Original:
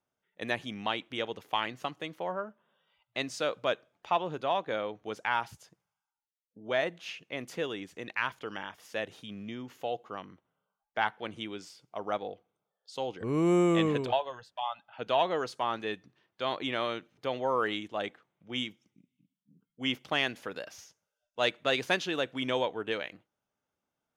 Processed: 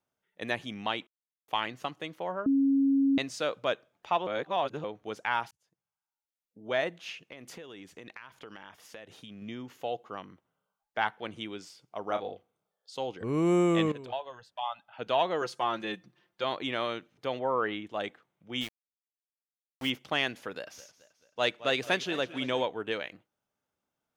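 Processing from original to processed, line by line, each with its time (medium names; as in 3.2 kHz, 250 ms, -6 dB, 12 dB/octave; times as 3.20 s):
1.07–1.48 s: mute
2.46–3.18 s: bleep 274 Hz -21 dBFS
4.27–4.84 s: reverse
5.51–6.68 s: fade in
7.31–9.42 s: compression 16:1, threshold -41 dBFS
12.07–12.95 s: doubling 32 ms -7 dB
13.92–14.64 s: fade in, from -15 dB
15.41–16.44 s: comb 5.7 ms, depth 66%
17.39–17.87 s: low-pass 2.6 kHz
18.61–19.90 s: small samples zeroed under -38 dBFS
20.54–22.63 s: modulated delay 217 ms, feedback 51%, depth 87 cents, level -16 dB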